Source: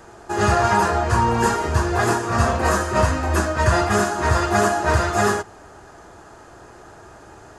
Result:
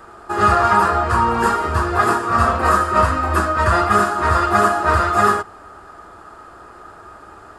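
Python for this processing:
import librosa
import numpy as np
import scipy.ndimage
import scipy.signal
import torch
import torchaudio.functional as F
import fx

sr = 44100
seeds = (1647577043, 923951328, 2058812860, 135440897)

y = fx.graphic_eq_31(x, sr, hz=(125, 1250, 6300), db=(-9, 12, -11))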